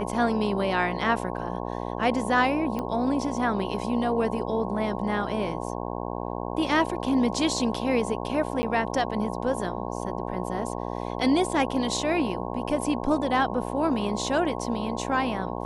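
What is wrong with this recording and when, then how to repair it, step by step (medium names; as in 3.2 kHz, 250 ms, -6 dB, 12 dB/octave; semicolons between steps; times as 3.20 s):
buzz 60 Hz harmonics 18 -32 dBFS
2.79 s: pop -18 dBFS
8.62–8.63 s: dropout 10 ms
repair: de-click; de-hum 60 Hz, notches 18; interpolate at 8.62 s, 10 ms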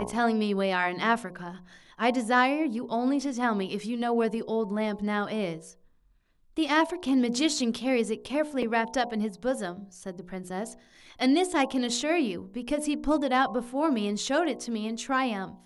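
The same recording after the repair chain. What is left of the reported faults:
nothing left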